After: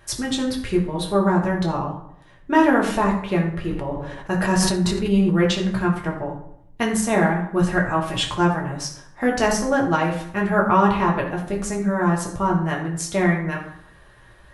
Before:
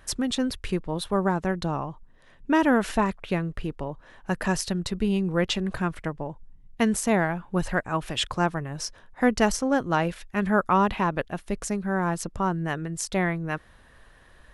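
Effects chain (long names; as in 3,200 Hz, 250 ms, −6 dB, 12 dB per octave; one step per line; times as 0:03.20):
convolution reverb RT60 0.75 s, pre-delay 4 ms, DRR −2.5 dB
0:03.64–0:05.43: level that may fall only so fast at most 37 dB per second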